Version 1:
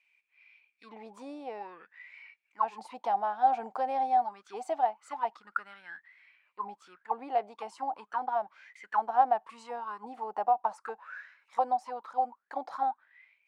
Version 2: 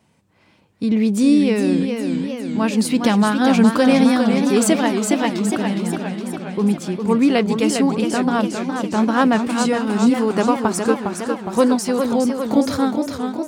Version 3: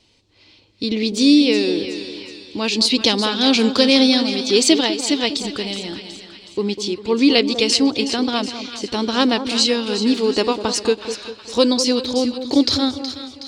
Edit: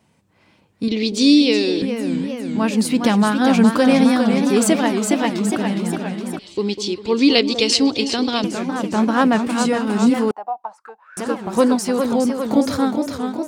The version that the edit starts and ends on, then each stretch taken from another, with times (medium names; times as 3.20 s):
2
0.88–1.82 s: from 3
6.39–8.44 s: from 3
10.31–11.17 s: from 1